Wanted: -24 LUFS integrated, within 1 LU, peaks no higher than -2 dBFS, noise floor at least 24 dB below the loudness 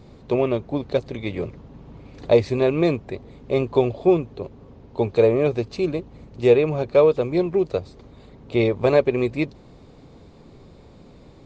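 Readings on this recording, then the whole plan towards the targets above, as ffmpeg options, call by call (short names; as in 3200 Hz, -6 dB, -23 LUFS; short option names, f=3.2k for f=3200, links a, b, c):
loudness -21.5 LUFS; peak -4.0 dBFS; loudness target -24.0 LUFS
-> -af "volume=-2.5dB"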